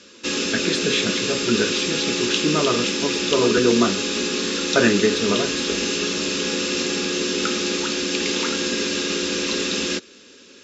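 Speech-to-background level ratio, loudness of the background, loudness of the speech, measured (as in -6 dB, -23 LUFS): -0.5 dB, -22.0 LUFS, -22.5 LUFS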